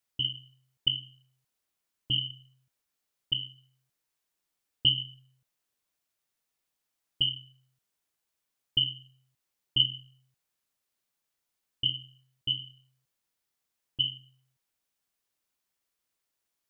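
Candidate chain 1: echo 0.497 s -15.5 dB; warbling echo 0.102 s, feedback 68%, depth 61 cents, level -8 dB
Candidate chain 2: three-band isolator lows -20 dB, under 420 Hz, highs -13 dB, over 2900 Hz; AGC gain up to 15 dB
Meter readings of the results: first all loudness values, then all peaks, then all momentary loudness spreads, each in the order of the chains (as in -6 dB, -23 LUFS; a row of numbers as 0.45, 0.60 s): -31.0, -20.5 LUFS; -10.0, -2.0 dBFS; 20, 17 LU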